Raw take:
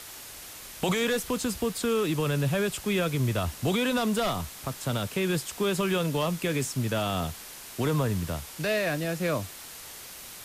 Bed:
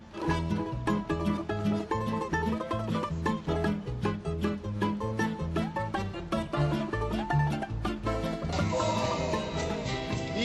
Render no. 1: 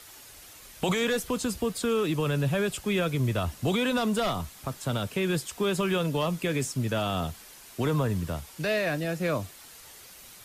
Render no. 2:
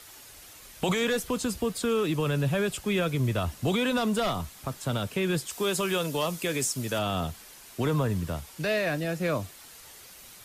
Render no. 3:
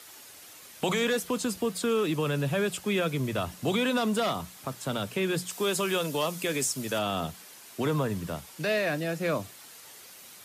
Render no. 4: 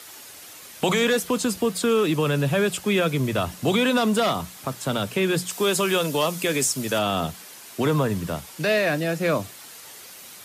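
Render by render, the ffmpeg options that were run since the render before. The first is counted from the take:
-af "afftdn=nr=7:nf=-44"
-filter_complex "[0:a]asettb=1/sr,asplit=3[a][b][c];[a]atrim=end=5.504[d];[b]atrim=start=5.5:end=6.99,asetpts=PTS-STARTPTS,afade=t=in:d=0.004:c=qsin,afade=t=out:st=1.486:d=0.004:c=qsin,bass=f=250:g=-6,treble=f=4k:g=7[e];[c]atrim=start=6.986[f];[d][e]acrossfade=d=0.004:c1=hsin:c2=qsin[g];[g][f]acrossfade=d=0.004:c1=qsin:c2=hsin"
-af "highpass=140,bandreject=f=60:t=h:w=6,bandreject=f=120:t=h:w=6,bandreject=f=180:t=h:w=6"
-af "volume=6dB"

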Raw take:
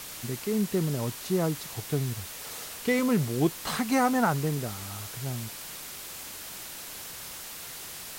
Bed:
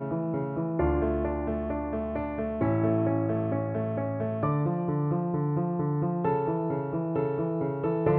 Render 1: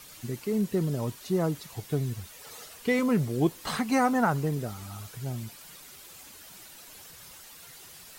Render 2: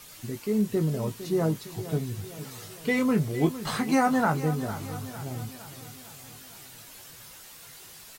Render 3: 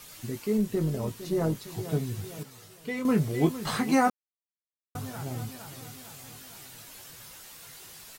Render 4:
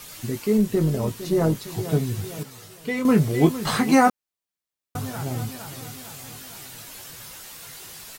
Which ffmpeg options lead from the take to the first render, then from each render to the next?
-af "afftdn=nr=10:nf=-41"
-filter_complex "[0:a]asplit=2[a][b];[b]adelay=19,volume=-7dB[c];[a][c]amix=inputs=2:normalize=0,aecho=1:1:457|914|1371|1828|2285:0.211|0.112|0.0594|0.0315|0.0167"
-filter_complex "[0:a]asettb=1/sr,asplit=3[a][b][c];[a]atrim=end=0.574[d];[b]atrim=start=0.57:end=1.68,asetpts=PTS-STARTPTS,afade=t=in:d=0.004:c=qsin,afade=t=out:st=1.106:d=0.004:c=qsin,tremolo=f=200:d=0.4[e];[c]atrim=start=1.676[f];[d][e]acrossfade=d=0.004:c1=hsin:c2=qsin[g];[g][f]acrossfade=d=0.004:c1=qsin:c2=hsin,asplit=5[h][i][j][k][l];[h]atrim=end=2.432[m];[i]atrim=start=2.428:end=3.052,asetpts=PTS-STARTPTS,volume=-8dB[n];[j]atrim=start=3.048:end=4.1,asetpts=PTS-STARTPTS,afade=t=out:st=1.048:d=0.004:c=hsin[o];[k]atrim=start=4.1:end=4.95,asetpts=PTS-STARTPTS,volume=0[p];[l]atrim=start=4.95,asetpts=PTS-STARTPTS,afade=t=in:d=0.004:c=hsin[q];[m][n]acrossfade=d=0.004:c1=hsin:c2=hsin[r];[o][p][q]concat=n=3:v=0:a=1[s];[r][s]acrossfade=d=0.004:c1=hsin:c2=hsin"
-af "volume=6.5dB"

